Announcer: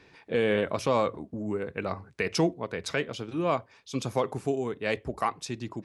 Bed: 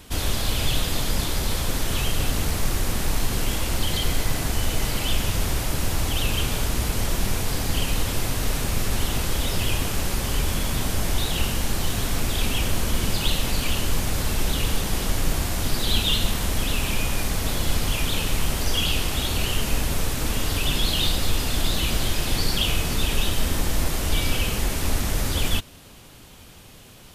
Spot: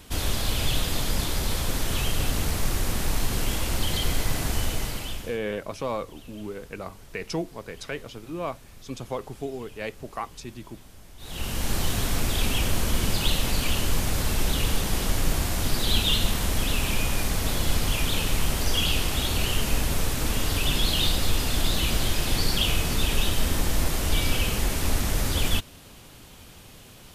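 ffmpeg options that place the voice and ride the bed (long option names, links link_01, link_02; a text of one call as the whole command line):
ffmpeg -i stem1.wav -i stem2.wav -filter_complex "[0:a]adelay=4950,volume=-4.5dB[link_01];[1:a]volume=21.5dB,afade=type=out:start_time=4.58:duration=0.81:silence=0.0749894,afade=type=in:start_time=11.18:duration=0.56:silence=0.0668344[link_02];[link_01][link_02]amix=inputs=2:normalize=0" out.wav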